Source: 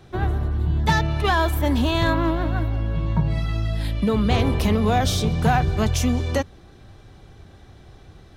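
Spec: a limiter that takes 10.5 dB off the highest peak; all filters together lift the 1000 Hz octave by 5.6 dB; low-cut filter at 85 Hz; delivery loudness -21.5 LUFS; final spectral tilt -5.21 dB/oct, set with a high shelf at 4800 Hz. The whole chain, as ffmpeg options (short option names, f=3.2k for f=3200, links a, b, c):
-af "highpass=85,equalizer=f=1k:t=o:g=7,highshelf=f=4.8k:g=6.5,volume=2dB,alimiter=limit=-11.5dB:level=0:latency=1"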